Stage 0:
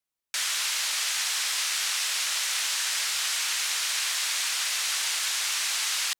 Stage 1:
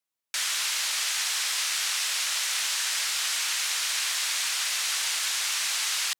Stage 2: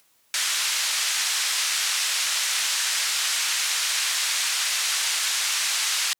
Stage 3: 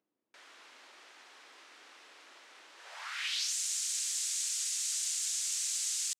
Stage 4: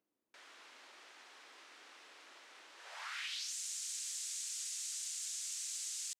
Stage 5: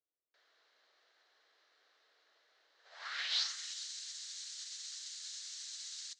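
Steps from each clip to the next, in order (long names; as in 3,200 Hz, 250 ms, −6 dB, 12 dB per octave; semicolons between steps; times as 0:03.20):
low-shelf EQ 97 Hz −11 dB
upward compression, threshold −48 dBFS; level +3.5 dB
band-pass filter sweep 300 Hz → 7,400 Hz, 0:02.74–0:03.53; level −4 dB
downward compressor 4 to 1, threshold −38 dBFS, peak gain reduction 7 dB; level −2 dB
loudspeaker in its box 380–6,200 Hz, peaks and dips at 460 Hz +6 dB, 650 Hz +5 dB, 930 Hz −4 dB, 1,700 Hz +4 dB, 2,500 Hz −6 dB, 4,100 Hz +7 dB; reverb whose tail is shaped and stops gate 470 ms rising, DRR 9 dB; expander for the loud parts 2.5 to 1, over −54 dBFS; level +7.5 dB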